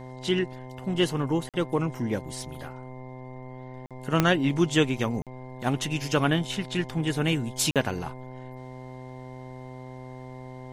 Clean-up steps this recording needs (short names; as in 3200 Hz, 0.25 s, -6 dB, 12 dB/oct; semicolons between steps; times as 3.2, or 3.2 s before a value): de-click; de-hum 128.3 Hz, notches 8; notch 2100 Hz, Q 30; interpolate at 1.49/3.86/5.22/7.71, 47 ms